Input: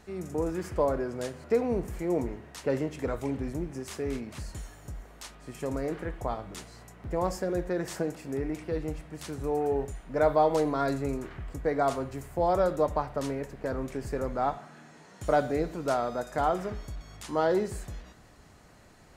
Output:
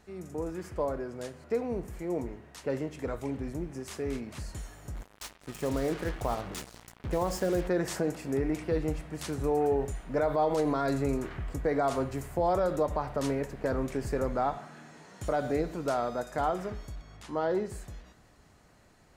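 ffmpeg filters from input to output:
ffmpeg -i in.wav -filter_complex "[0:a]asettb=1/sr,asplit=3[link_01][link_02][link_03];[link_01]atrim=end=4.954[link_04];[link_02]atrim=start=4.95:end=7.68,asetpts=PTS-STARTPTS,afade=type=in:duration=0.004:curve=qsin,afade=type=out:start_time=2.726:duration=0.004:curve=qsin,acrusher=bits=6:mix=0:aa=0.5[link_05];[link_03]atrim=start=7.676[link_06];[link_04][link_05]acrossfade=duration=0.004:curve1=hsin:curve2=qsin[link_07];[link_07][link_06]acrossfade=duration=0.004:curve1=qsin:curve2=hsin,asettb=1/sr,asplit=3[link_08][link_09][link_10];[link_08]atrim=end=17.014[link_11];[link_09]atrim=start=17.01:end=17.7,asetpts=PTS-STARTPTS,afade=type=in:duration=0.004:curve=qsin,afade=type=out:start_time=0.686:duration=0.004:curve=qsin,aemphasis=mode=reproduction:type=cd[link_12];[link_10]atrim=start=17.696[link_13];[link_11][link_12]acrossfade=duration=0.004:curve1=hsin:curve2=qsin[link_14];[link_14][link_13]acrossfade=duration=0.004:curve1=qsin:curve2=hsin,dynaudnorm=framelen=860:gausssize=11:maxgain=9dB,alimiter=limit=-13.5dB:level=0:latency=1:release=84,volume=-5dB" out.wav

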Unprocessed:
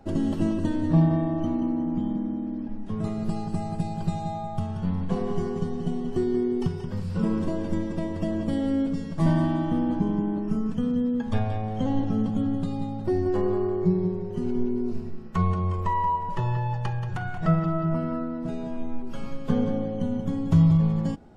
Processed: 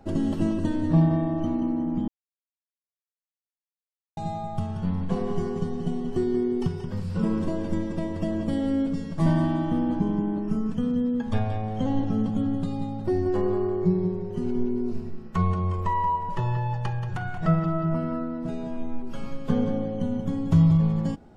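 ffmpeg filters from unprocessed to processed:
ffmpeg -i in.wav -filter_complex "[0:a]asplit=3[link_01][link_02][link_03];[link_01]atrim=end=2.08,asetpts=PTS-STARTPTS,afade=type=out:start_time=2.076:duration=0.004:curve=hsin[link_04];[link_02]atrim=start=2.08:end=4.17,asetpts=PTS-STARTPTS,volume=0[link_05];[link_03]atrim=start=4.17,asetpts=PTS-STARTPTS,afade=type=in:duration=0.004:curve=hsin[link_06];[link_04][link_05][link_06]concat=n=3:v=0:a=1" out.wav

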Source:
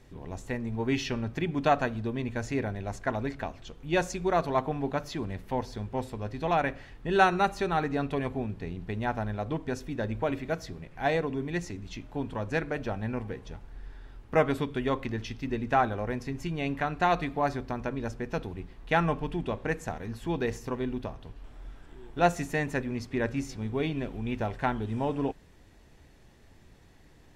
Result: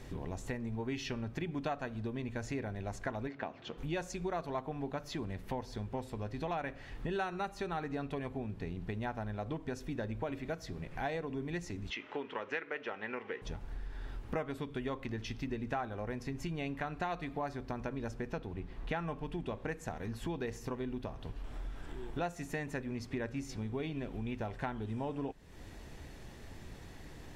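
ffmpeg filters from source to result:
ffmpeg -i in.wav -filter_complex "[0:a]asplit=3[link_01][link_02][link_03];[link_01]afade=type=out:start_time=3.27:duration=0.02[link_04];[link_02]highpass=180,lowpass=3300,afade=type=in:start_time=3.27:duration=0.02,afade=type=out:start_time=3.77:duration=0.02[link_05];[link_03]afade=type=in:start_time=3.77:duration=0.02[link_06];[link_04][link_05][link_06]amix=inputs=3:normalize=0,asettb=1/sr,asplit=3[link_07][link_08][link_09];[link_07]atrim=end=11.904[link_10];[link_08]atrim=start=11.9:end=13.42,asetpts=PTS-STARTPTS,afade=type=in:duration=0.004:curve=qsin,afade=type=out:start_time=1.516:duration=0.004:curve=qsin,highpass=420,equalizer=frequency=420:width_type=q:width=4:gain=5,equalizer=frequency=680:width_type=q:width=4:gain=-6,equalizer=frequency=1300:width_type=q:width=4:gain=5,equalizer=frequency=2000:width_type=q:width=4:gain=9,equalizer=frequency=2900:width_type=q:width=4:gain=7,equalizer=frequency=4500:width_type=q:width=4:gain=-6,lowpass=frequency=5200:width=0.5412,lowpass=frequency=5200:width=1.3066[link_11];[link_09]atrim=start=13.416[link_12];[link_10][link_11]acrossfade=duration=0.004:curve1=hsin:curve2=qsin[link_13];[link_13][link_12]acrossfade=duration=0.004:curve1=qsin:curve2=hsin,asettb=1/sr,asplit=3[link_14][link_15][link_16];[link_14]atrim=end=18.324[link_17];[link_15]atrim=start=18.32:end=19,asetpts=PTS-STARTPTS,afade=type=in:duration=0.004:curve=qsin,afade=type=out:start_time=0.676:duration=0.004:curve=qsin,highshelf=frequency=5100:gain=-7.5[link_18];[link_16]atrim=start=18.996[link_19];[link_17][link_18]acrossfade=duration=0.004:curve1=hsin:curve2=qsin[link_20];[link_20][link_19]acrossfade=duration=0.004:curve1=qsin:curve2=hsin,acompressor=threshold=-45dB:ratio=4,volume=7dB" out.wav

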